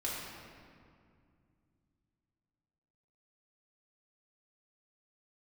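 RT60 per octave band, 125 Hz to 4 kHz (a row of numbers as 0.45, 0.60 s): 3.8, 3.3, 2.4, 2.1, 1.9, 1.4 s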